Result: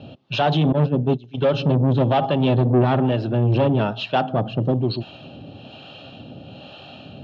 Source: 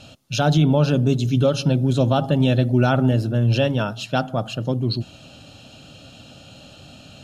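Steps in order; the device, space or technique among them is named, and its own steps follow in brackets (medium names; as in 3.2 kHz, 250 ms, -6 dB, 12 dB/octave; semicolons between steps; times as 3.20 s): 0.72–1.42 s: gate -16 dBFS, range -23 dB; guitar amplifier with harmonic tremolo (harmonic tremolo 1.1 Hz, depth 70%, crossover 580 Hz; saturation -22 dBFS, distortion -9 dB; cabinet simulation 100–3400 Hz, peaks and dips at 380 Hz +5 dB, 790 Hz +3 dB, 1.4 kHz -5 dB, 2.1 kHz -6 dB); trim +8.5 dB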